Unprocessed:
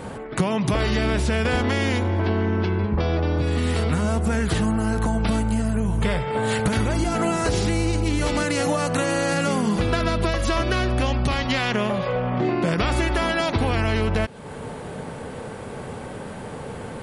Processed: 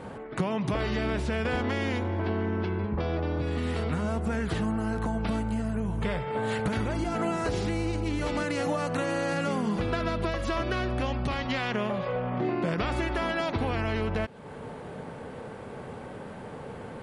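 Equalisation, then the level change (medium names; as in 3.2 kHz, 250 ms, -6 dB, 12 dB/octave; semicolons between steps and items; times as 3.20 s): bass shelf 100 Hz -5 dB; treble shelf 5.1 kHz -11.5 dB; -5.5 dB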